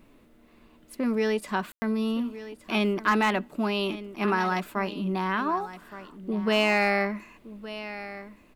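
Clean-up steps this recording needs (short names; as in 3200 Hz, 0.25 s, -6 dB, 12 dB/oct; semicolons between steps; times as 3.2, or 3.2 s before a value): clip repair -12 dBFS; room tone fill 1.72–1.82; expander -48 dBFS, range -21 dB; inverse comb 1.167 s -14.5 dB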